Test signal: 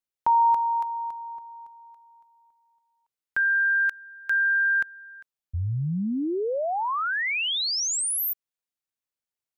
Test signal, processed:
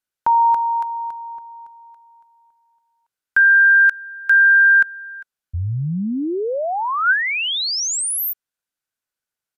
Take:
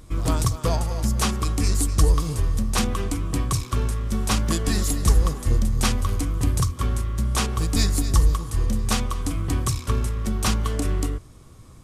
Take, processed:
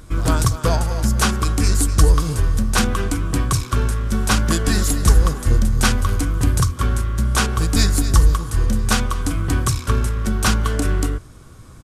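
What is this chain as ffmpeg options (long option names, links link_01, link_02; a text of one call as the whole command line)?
ffmpeg -i in.wav -af "aresample=32000,aresample=44100,equalizer=frequency=1500:width=6:gain=9.5,volume=4.5dB" out.wav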